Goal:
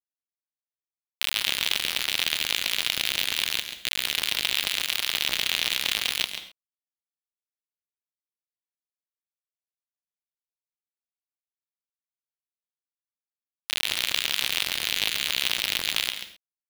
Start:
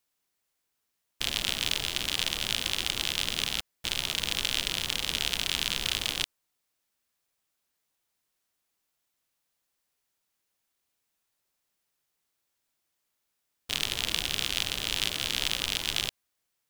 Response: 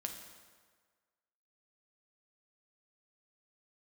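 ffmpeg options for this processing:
-filter_complex "[0:a]lowpass=4.1k,equalizer=f=120:w=2.2:g=-8,acrusher=bits=3:mix=0:aa=0.000001,asplit=2[a][b];[1:a]atrim=start_sample=2205,atrim=end_sample=6174,adelay=136[c];[b][c]afir=irnorm=-1:irlink=0,volume=-6.5dB[d];[a][d]amix=inputs=2:normalize=0,volume=5dB"

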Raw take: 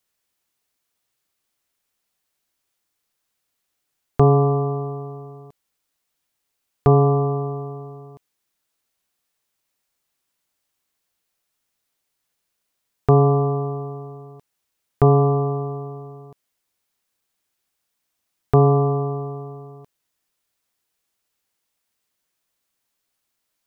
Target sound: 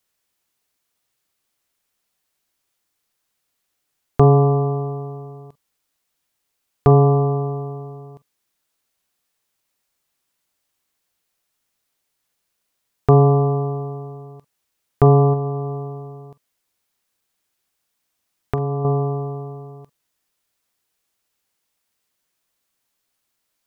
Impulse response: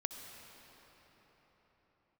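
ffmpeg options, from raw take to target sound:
-filter_complex "[0:a]asettb=1/sr,asplit=3[a][b][c];[a]atrim=end=15.334[d];[b]atrim=start=15.33:end=18.85,asetpts=PTS-STARTPTS,afade=t=in:d=0.004:c=qsin,afade=t=out:st=3.516:d=0.004:c=qsin,acompressor=threshold=-22dB:ratio=6[e];[c]atrim=start=18.846[f];[d][e]acrossfade=d=0.004:c1=hsin:c2=qsin[g];[g][f]acrossfade=d=0.004:c1=qsin:c2=hsin[h];[1:a]atrim=start_sample=2205,atrim=end_sample=3087,asetrate=61740,aresample=44100[i];[h][i]afir=irnorm=-1:irlink=0,volume=6.5dB"

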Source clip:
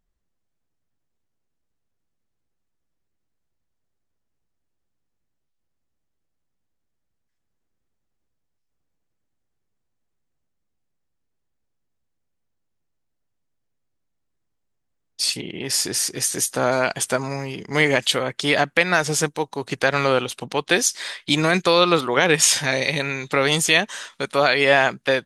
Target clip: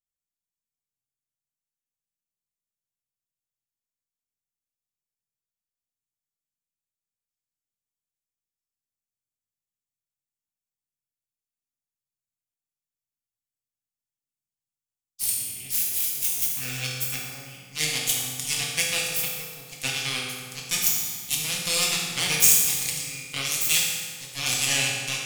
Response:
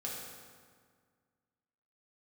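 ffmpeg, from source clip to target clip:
-filter_complex "[0:a]aeval=exprs='0.891*(cos(1*acos(clip(val(0)/0.891,-1,1)))-cos(1*PI/2))+0.141*(cos(3*acos(clip(val(0)/0.891,-1,1)))-cos(3*PI/2))+0.0891*(cos(6*acos(clip(val(0)/0.891,-1,1)))-cos(6*PI/2))+0.0891*(cos(7*acos(clip(val(0)/0.891,-1,1)))-cos(7*PI/2))':c=same,aexciter=amount=5.8:drive=9.3:freq=2.3k,equalizer=f=125:t=o:w=1:g=6,equalizer=f=500:t=o:w=1:g=-5,equalizer=f=4k:t=o:w=1:g=-9[a];[1:a]atrim=start_sample=2205[b];[a][b]afir=irnorm=-1:irlink=0,volume=-10dB"

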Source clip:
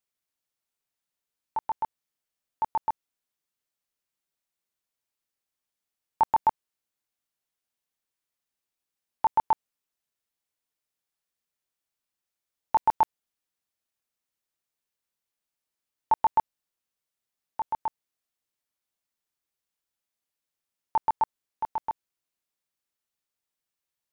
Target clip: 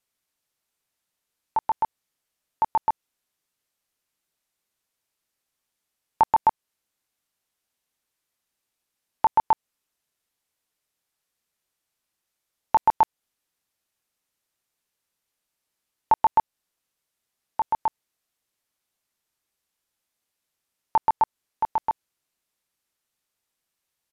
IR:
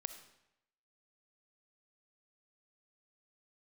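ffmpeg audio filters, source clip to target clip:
-filter_complex "[0:a]asplit=2[a][b];[b]acompressor=threshold=-28dB:ratio=6,volume=2dB[c];[a][c]amix=inputs=2:normalize=0,aresample=32000,aresample=44100"

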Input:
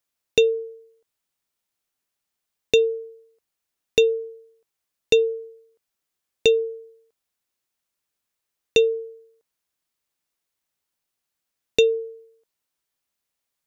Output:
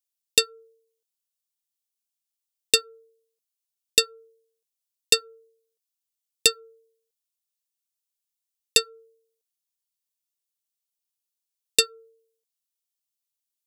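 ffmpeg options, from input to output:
-af "aeval=exprs='0.398*(cos(1*acos(clip(val(0)/0.398,-1,1)))-cos(1*PI/2))+0.158*(cos(3*acos(clip(val(0)/0.398,-1,1)))-cos(3*PI/2))':c=same,aexciter=amount=5:drive=5:freq=2.6k,volume=-6.5dB"

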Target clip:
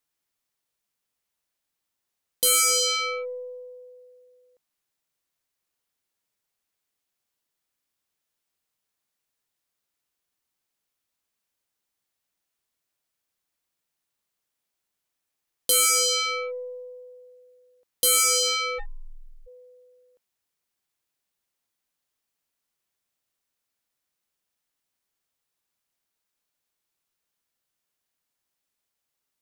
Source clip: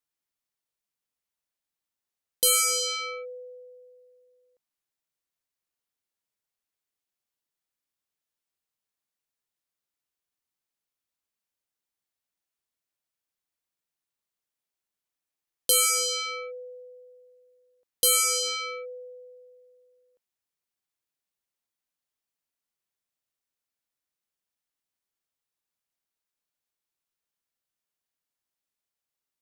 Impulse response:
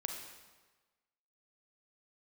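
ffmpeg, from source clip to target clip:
-filter_complex "[0:a]asoftclip=type=tanh:threshold=-25.5dB,asplit=3[a][b][c];[a]afade=t=out:st=18.78:d=0.02[d];[b]afreqshift=-480,afade=t=in:st=18.78:d=0.02,afade=t=out:st=19.46:d=0.02[e];[c]afade=t=in:st=19.46:d=0.02[f];[d][e][f]amix=inputs=3:normalize=0,aeval=exprs='0.0531*(cos(1*acos(clip(val(0)/0.0531,-1,1)))-cos(1*PI/2))+0.00266*(cos(3*acos(clip(val(0)/0.0531,-1,1)))-cos(3*PI/2))+0.000335*(cos(8*acos(clip(val(0)/0.0531,-1,1)))-cos(8*PI/2))':c=same,volume=7.5dB"

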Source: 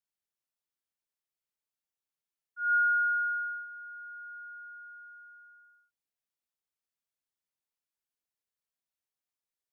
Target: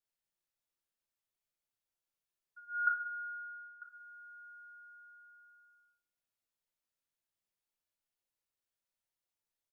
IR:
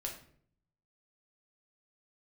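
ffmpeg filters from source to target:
-filter_complex "[0:a]asettb=1/sr,asplit=3[a][b][c];[a]atrim=end=2.874[d];[b]atrim=start=2.87:end=3.82,asetpts=PTS-STARTPTS,afade=t=in:d=0.004:c=qsin,afade=t=out:st=0.946:d=0.004:c=qsin,lowpass=f=1.3k:w=0.5412,lowpass=f=1.3k:w=1.3066[e];[c]atrim=start=3.816[f];[d][e]acrossfade=d=0.004:c1=hsin:c2=qsin[g];[g][f]acrossfade=d=0.004:c1=qsin:c2=hsin,aecho=1:1:104:0.126[h];[1:a]atrim=start_sample=2205[i];[h][i]afir=irnorm=-1:irlink=0"

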